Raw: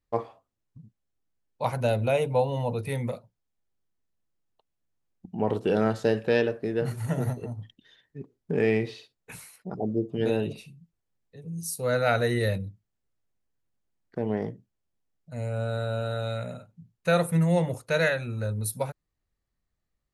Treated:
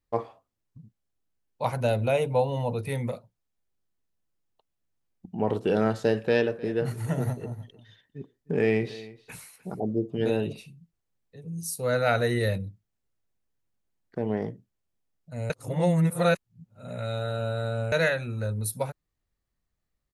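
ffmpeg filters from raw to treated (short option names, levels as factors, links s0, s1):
-filter_complex "[0:a]asplit=3[s0][s1][s2];[s0]afade=t=out:st=6.42:d=0.02[s3];[s1]aecho=1:1:307:0.112,afade=t=in:st=6.42:d=0.02,afade=t=out:st=9.79:d=0.02[s4];[s2]afade=t=in:st=9.79:d=0.02[s5];[s3][s4][s5]amix=inputs=3:normalize=0,asplit=3[s6][s7][s8];[s6]atrim=end=15.502[s9];[s7]atrim=start=15.498:end=17.922,asetpts=PTS-STARTPTS,areverse[s10];[s8]atrim=start=17.918[s11];[s9][s10]acrossfade=d=0.004:c1=hsin:c2=hsin[s12];[s12][s11]acrossfade=d=0.004:c1=hsin:c2=hsin"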